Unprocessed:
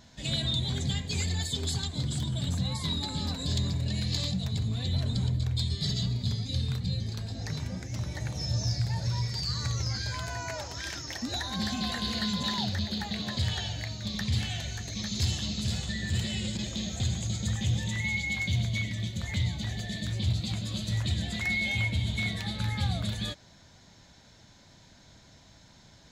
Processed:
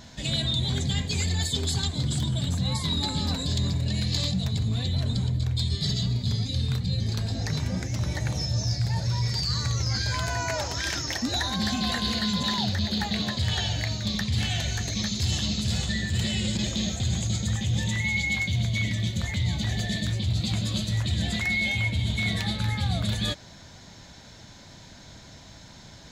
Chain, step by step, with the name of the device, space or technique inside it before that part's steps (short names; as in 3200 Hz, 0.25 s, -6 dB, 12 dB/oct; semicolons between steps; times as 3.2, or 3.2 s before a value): compression on the reversed sound (reverse; compressor 4:1, threshold -32 dBFS, peak gain reduction 8.5 dB; reverse); gain +8.5 dB